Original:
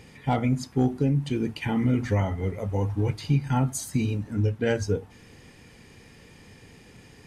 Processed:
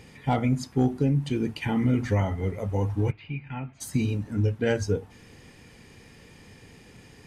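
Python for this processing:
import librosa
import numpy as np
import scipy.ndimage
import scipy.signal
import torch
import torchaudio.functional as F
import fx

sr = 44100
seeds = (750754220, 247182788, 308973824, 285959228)

y = fx.ladder_lowpass(x, sr, hz=2700.0, resonance_pct=70, at=(3.1, 3.8), fade=0.02)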